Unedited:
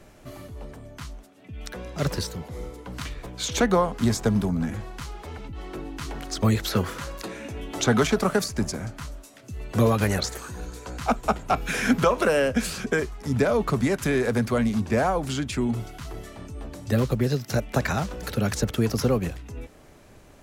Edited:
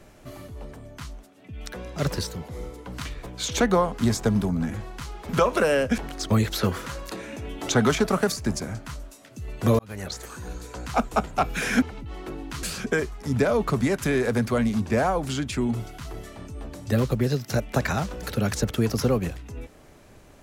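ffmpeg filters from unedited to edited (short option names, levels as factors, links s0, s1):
-filter_complex "[0:a]asplit=6[s0][s1][s2][s3][s4][s5];[s0]atrim=end=5.292[s6];[s1]atrim=start=11.938:end=12.632[s7];[s2]atrim=start=6.098:end=9.91,asetpts=PTS-STARTPTS,afade=t=out:st=3.808:d=0.004:c=hsin[s8];[s3]atrim=start=9.91:end=11.942,asetpts=PTS-STARTPTS,afade=t=in:d=0.68[s9];[s4]atrim=start=5.288:end=6.102[s10];[s5]atrim=start=12.628[s11];[s6][s7]acrossfade=d=0.004:c1=hsin:c2=hsin[s12];[s8][s9]concat=n=2:v=0:a=1[s13];[s12][s13]acrossfade=d=0.004:c1=hsin:c2=hsin[s14];[s14][s10]acrossfade=d=0.004:c1=hsin:c2=hsin[s15];[s15][s11]acrossfade=d=0.004:c1=hsin:c2=hsin"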